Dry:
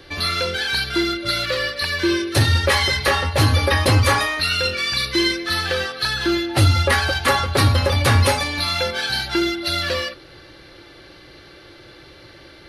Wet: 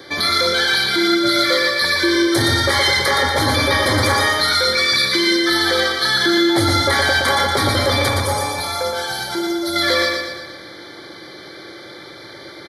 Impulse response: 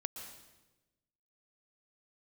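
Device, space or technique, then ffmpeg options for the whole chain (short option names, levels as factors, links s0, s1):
PA system with an anti-feedback notch: -filter_complex "[0:a]highpass=180,asuperstop=centerf=2700:order=20:qfactor=4.1,alimiter=limit=0.158:level=0:latency=1:release=12,asettb=1/sr,asplit=3[s0][s1][s2];[s0]atrim=end=8.084[s3];[s1]atrim=start=8.08:end=9.76,asetpts=PTS-STARTPTS,afade=t=in:d=0.004:c=qsin,afade=t=out:st=1.676:d=0.004:c=qsin,equalizer=f=250:t=o:w=1:g=-9,equalizer=f=2000:t=o:w=1:g=-10,equalizer=f=4000:t=o:w=1:g=-8[s4];[s2]atrim=start=9.756[s5];[s3][s4]acrossfade=d=0.004:c1=hsin:c2=qsin[s6];[s6][s5]acrossfade=d=0.004:c1=qsin:c2=hsin,aecho=1:1:118|236|354|472|590|708|826:0.631|0.322|0.164|0.0837|0.0427|0.0218|0.0111,volume=2.11"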